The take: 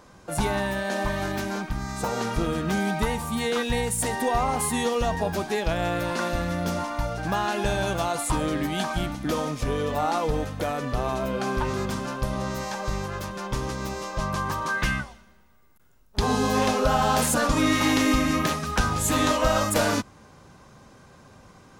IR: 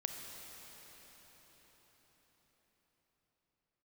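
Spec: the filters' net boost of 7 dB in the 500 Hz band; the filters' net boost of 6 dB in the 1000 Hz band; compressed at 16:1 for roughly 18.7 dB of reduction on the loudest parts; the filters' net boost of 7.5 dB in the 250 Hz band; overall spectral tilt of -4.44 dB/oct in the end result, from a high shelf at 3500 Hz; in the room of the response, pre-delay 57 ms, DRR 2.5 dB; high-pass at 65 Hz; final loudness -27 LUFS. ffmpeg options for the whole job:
-filter_complex "[0:a]highpass=65,equalizer=f=250:t=o:g=7.5,equalizer=f=500:t=o:g=5,equalizer=f=1k:t=o:g=5,highshelf=f=3.5k:g=7.5,acompressor=threshold=-30dB:ratio=16,asplit=2[a][b];[1:a]atrim=start_sample=2205,adelay=57[c];[b][c]afir=irnorm=-1:irlink=0,volume=-3dB[d];[a][d]amix=inputs=2:normalize=0,volume=5dB"

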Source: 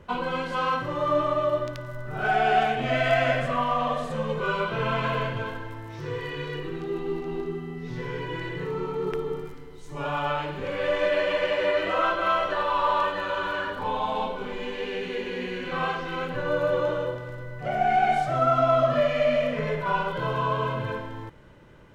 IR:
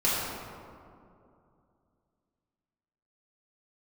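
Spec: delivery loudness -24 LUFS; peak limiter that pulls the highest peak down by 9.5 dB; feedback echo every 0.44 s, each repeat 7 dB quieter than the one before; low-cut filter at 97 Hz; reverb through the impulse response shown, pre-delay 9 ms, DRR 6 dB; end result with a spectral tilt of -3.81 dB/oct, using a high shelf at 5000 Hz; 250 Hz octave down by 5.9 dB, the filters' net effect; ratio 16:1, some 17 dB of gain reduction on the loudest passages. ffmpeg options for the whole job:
-filter_complex "[0:a]highpass=97,equalizer=f=250:t=o:g=-8.5,highshelf=f=5k:g=-7.5,acompressor=threshold=-35dB:ratio=16,alimiter=level_in=10dB:limit=-24dB:level=0:latency=1,volume=-10dB,aecho=1:1:440|880|1320|1760|2200:0.447|0.201|0.0905|0.0407|0.0183,asplit=2[a][b];[1:a]atrim=start_sample=2205,adelay=9[c];[b][c]afir=irnorm=-1:irlink=0,volume=-19dB[d];[a][d]amix=inputs=2:normalize=0,volume=16dB"

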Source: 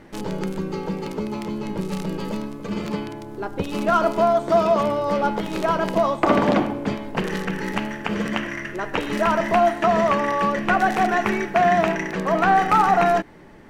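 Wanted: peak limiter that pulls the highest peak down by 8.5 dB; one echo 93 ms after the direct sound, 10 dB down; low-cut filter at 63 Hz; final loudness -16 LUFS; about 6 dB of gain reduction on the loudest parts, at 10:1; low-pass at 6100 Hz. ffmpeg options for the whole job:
-af "highpass=63,lowpass=6.1k,acompressor=threshold=-19dB:ratio=10,alimiter=limit=-15.5dB:level=0:latency=1,aecho=1:1:93:0.316,volume=10dB"

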